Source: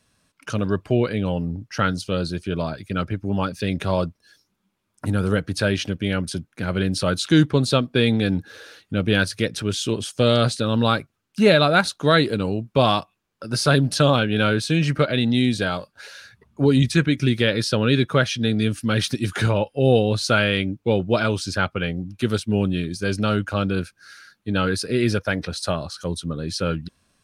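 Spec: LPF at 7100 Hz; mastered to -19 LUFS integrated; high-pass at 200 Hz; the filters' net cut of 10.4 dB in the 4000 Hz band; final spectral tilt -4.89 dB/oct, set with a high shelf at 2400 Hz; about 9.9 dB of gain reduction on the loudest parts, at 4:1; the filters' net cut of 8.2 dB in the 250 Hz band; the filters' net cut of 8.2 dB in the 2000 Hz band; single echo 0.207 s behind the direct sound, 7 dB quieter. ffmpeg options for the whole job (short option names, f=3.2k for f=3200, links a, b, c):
-af "highpass=200,lowpass=7.1k,equalizer=f=250:t=o:g=-8,equalizer=f=2k:t=o:g=-7.5,highshelf=f=2.4k:g=-7.5,equalizer=f=4k:t=o:g=-3.5,acompressor=threshold=-27dB:ratio=4,aecho=1:1:207:0.447,volume=13.5dB"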